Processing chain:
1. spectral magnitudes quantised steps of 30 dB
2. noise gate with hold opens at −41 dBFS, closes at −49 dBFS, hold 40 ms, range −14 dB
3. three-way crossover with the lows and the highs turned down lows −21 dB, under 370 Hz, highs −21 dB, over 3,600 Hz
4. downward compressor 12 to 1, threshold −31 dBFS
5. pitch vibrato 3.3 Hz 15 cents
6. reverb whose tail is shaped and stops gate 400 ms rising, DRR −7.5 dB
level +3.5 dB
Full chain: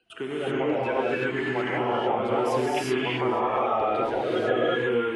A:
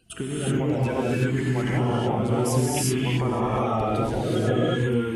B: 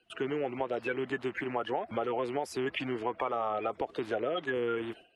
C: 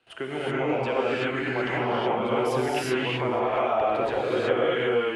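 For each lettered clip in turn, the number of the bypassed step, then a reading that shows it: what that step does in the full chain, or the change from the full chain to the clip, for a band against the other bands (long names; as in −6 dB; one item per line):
3, 8 kHz band +14.5 dB
6, change in crest factor +2.0 dB
1, 1 kHz band −1.5 dB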